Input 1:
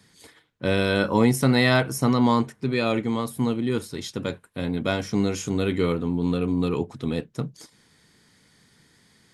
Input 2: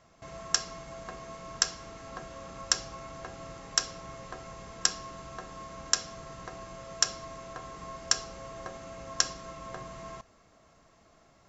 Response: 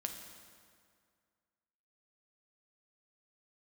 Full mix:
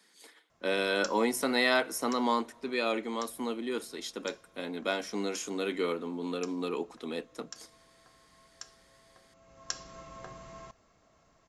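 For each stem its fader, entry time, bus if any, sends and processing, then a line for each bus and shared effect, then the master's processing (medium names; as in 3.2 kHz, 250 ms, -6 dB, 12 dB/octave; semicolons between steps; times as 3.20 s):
-5.0 dB, 0.00 s, send -19 dB, Bessel high-pass 370 Hz, order 8
-4.5 dB, 0.50 s, no send, auto duck -16 dB, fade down 1.95 s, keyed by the first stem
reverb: on, RT60 2.1 s, pre-delay 5 ms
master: none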